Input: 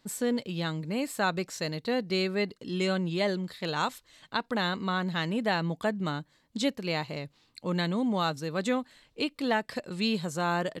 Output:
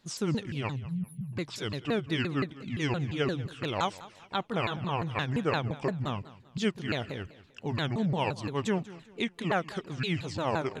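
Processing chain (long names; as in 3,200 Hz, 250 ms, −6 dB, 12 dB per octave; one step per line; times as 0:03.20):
pitch shifter swept by a sawtooth −9 semitones, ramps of 173 ms
time-frequency box erased 0:00.76–0:01.33, 230–9,600 Hz
feedback echo with a swinging delay time 195 ms, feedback 34%, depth 148 cents, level −18 dB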